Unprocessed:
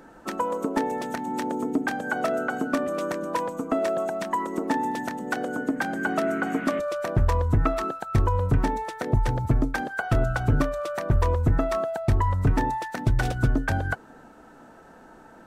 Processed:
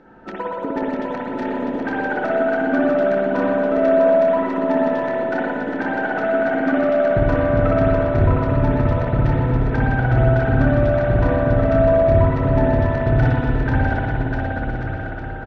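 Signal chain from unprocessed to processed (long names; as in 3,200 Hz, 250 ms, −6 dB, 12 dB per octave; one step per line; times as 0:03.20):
0:01.26–0:03.14: background noise blue −55 dBFS
high-frequency loss of the air 240 metres
notch filter 1,100 Hz, Q 5.8
bouncing-ball delay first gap 650 ms, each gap 0.75×, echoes 5
spring reverb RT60 2.1 s, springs 56 ms, chirp 75 ms, DRR −5 dB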